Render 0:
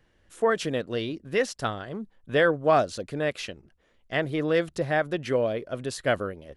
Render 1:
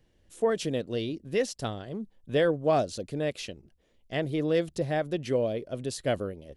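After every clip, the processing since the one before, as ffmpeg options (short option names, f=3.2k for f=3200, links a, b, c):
-af "equalizer=f=1.4k:t=o:w=1.5:g=-11"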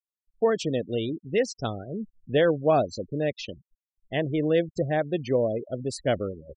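-af "afftfilt=real='re*gte(hypot(re,im),0.0178)':imag='im*gte(hypot(re,im),0.0178)':win_size=1024:overlap=0.75,volume=3dB"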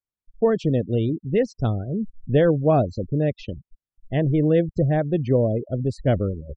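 -af "aemphasis=mode=reproduction:type=riaa"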